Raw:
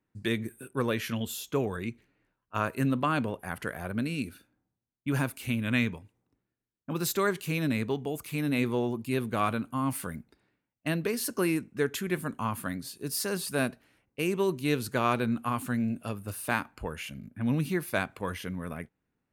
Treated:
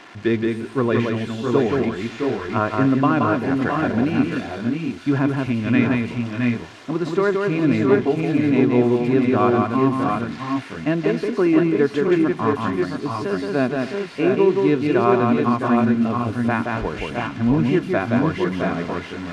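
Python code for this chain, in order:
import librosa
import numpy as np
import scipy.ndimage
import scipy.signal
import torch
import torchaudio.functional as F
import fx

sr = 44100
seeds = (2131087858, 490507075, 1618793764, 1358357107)

p1 = x + 0.5 * 10.0 ** (-24.5 / 20.0) * np.diff(np.sign(x), prepend=np.sign(x[:1]))
p2 = fx.peak_eq(p1, sr, hz=76.0, db=-11.5, octaves=0.69)
p3 = p2 + 0.36 * np.pad(p2, (int(2.9 * sr / 1000.0), 0))[:len(p2)]
p4 = fx.rider(p3, sr, range_db=10, speed_s=0.5)
p5 = p3 + (p4 * 10.0 ** (3.0 / 20.0))
p6 = fx.spacing_loss(p5, sr, db_at_10k=42)
p7 = p6 + fx.echo_multitap(p6, sr, ms=(174, 269, 664, 689), db=(-3.5, -17.5, -6.5, -5.5), dry=0)
y = p7 * 10.0 ** (3.5 / 20.0)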